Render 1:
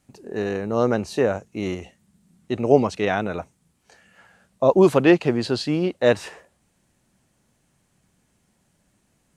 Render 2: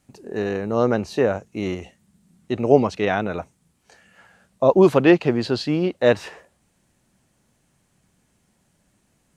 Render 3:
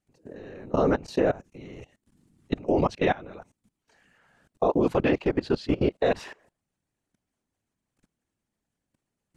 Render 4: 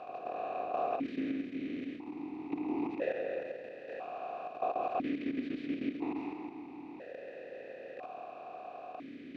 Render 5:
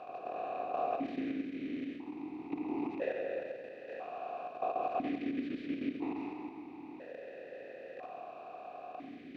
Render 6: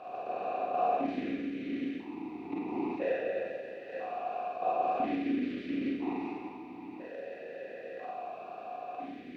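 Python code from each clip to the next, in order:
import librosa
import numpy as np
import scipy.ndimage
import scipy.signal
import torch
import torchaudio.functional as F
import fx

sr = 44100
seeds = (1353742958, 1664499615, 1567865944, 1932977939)

y1 = fx.dynamic_eq(x, sr, hz=9000.0, q=1.1, threshold_db=-52.0, ratio=4.0, max_db=-7)
y1 = y1 * librosa.db_to_amplitude(1.0)
y2 = fx.whisperise(y1, sr, seeds[0])
y2 = fx.high_shelf(y2, sr, hz=6600.0, db=-5.0)
y2 = fx.level_steps(y2, sr, step_db=21)
y3 = fx.bin_compress(y2, sr, power=0.2)
y3 = y3 + 10.0 ** (-8.0 / 20.0) * np.pad(y3, (int(136 * sr / 1000.0), 0))[:len(y3)]
y3 = fx.vowel_held(y3, sr, hz=1.0)
y3 = y3 * librosa.db_to_amplitude(-8.5)
y4 = fx.echo_feedback(y3, sr, ms=93, feedback_pct=51, wet_db=-11.5)
y4 = y4 * librosa.db_to_amplitude(-1.5)
y5 = fx.rev_schroeder(y4, sr, rt60_s=0.35, comb_ms=32, drr_db=-2.0)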